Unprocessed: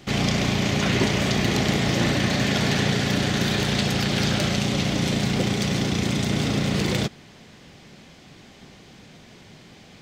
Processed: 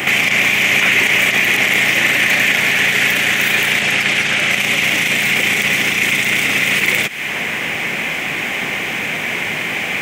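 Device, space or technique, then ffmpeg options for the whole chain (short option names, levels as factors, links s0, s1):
mastering chain: -filter_complex "[0:a]highpass=57,equalizer=f=1400:t=o:w=0.77:g=-2.5,acrossover=split=1700|4800[s0][s1][s2];[s0]acompressor=threshold=0.0141:ratio=4[s3];[s1]acompressor=threshold=0.0112:ratio=4[s4];[s2]acompressor=threshold=0.00891:ratio=4[s5];[s3][s4][s5]amix=inputs=3:normalize=0,acompressor=threshold=0.00891:ratio=1.5,tiltshelf=f=900:g=-3.5,alimiter=level_in=35.5:limit=0.891:release=50:level=0:latency=1,aemphasis=mode=production:type=bsi,asettb=1/sr,asplit=3[s6][s7][s8];[s6]atrim=end=3.824[s9];[s7]atrim=start=3.82:end=4.51,asetpts=PTS-STARTPTS,afade=t=in:d=0.004:c=qsin,afade=t=out:st=0.686:d=0.004:c=qsin,lowpass=10000[s10];[s8]atrim=start=4.506[s11];[s9][s10]acrossfade=d=0.004:c1=hsin:c2=qsin[s12];[s12][s11]acrossfade=d=0.004:c1=qsin:c2=hsin,highshelf=f=3200:t=q:w=3:g=-11.5,volume=0.562"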